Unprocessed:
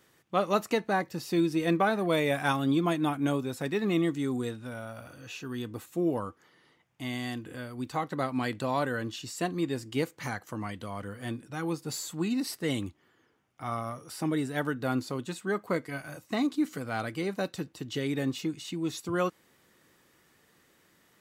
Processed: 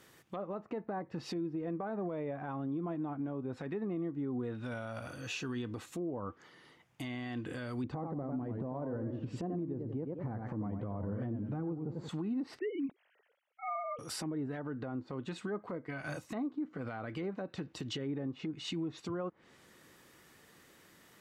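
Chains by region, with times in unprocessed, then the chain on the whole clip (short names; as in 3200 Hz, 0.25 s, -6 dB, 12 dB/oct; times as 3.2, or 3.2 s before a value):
7.84–12.09 tilt shelf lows +9 dB, about 940 Hz + warbling echo 93 ms, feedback 34%, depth 173 cents, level -8 dB
12.59–13.99 sine-wave speech + bell 1200 Hz -7.5 dB 1.2 oct
whole clip: treble ducked by the level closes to 1000 Hz, closed at -26.5 dBFS; compressor 10:1, threshold -35 dBFS; limiter -33 dBFS; gain +3.5 dB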